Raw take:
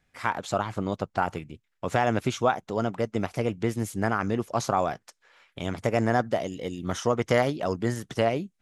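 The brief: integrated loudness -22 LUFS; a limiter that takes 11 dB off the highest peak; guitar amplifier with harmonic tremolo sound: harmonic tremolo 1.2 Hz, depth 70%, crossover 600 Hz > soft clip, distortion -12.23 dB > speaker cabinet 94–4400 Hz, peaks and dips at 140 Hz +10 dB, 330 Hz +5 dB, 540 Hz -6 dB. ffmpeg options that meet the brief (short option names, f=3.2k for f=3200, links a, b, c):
-filter_complex "[0:a]alimiter=limit=-19dB:level=0:latency=1,acrossover=split=600[a][b];[a]aeval=exprs='val(0)*(1-0.7/2+0.7/2*cos(2*PI*1.2*n/s))':c=same[c];[b]aeval=exprs='val(0)*(1-0.7/2-0.7/2*cos(2*PI*1.2*n/s))':c=same[d];[c][d]amix=inputs=2:normalize=0,asoftclip=threshold=-29dB,highpass=94,equalizer=f=140:t=q:w=4:g=10,equalizer=f=330:t=q:w=4:g=5,equalizer=f=540:t=q:w=4:g=-6,lowpass=f=4.4k:w=0.5412,lowpass=f=4.4k:w=1.3066,volume=16dB"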